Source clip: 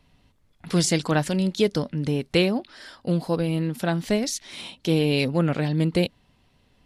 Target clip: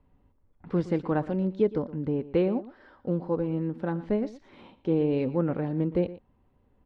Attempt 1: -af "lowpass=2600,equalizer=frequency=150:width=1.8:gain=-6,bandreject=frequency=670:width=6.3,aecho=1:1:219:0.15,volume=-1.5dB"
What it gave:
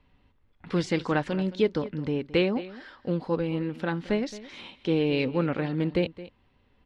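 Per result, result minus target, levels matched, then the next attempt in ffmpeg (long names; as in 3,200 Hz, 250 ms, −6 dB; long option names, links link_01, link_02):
echo 102 ms late; 2,000 Hz band +10.0 dB
-af "lowpass=2600,equalizer=frequency=150:width=1.8:gain=-6,bandreject=frequency=670:width=6.3,aecho=1:1:117:0.15,volume=-1.5dB"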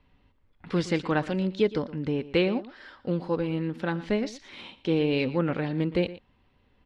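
2,000 Hz band +10.0 dB
-af "lowpass=970,equalizer=frequency=150:width=1.8:gain=-6,bandreject=frequency=670:width=6.3,aecho=1:1:117:0.15,volume=-1.5dB"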